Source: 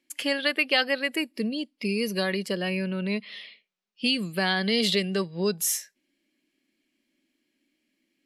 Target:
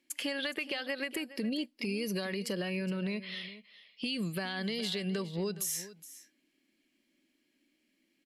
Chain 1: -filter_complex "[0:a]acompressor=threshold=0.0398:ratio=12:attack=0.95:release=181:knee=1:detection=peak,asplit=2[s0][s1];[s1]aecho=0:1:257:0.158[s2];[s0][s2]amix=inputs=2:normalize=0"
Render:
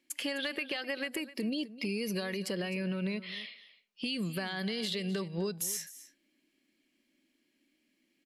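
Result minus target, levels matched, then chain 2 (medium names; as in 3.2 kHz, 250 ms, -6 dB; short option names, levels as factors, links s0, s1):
echo 159 ms early
-filter_complex "[0:a]acompressor=threshold=0.0398:ratio=12:attack=0.95:release=181:knee=1:detection=peak,asplit=2[s0][s1];[s1]aecho=0:1:416:0.158[s2];[s0][s2]amix=inputs=2:normalize=0"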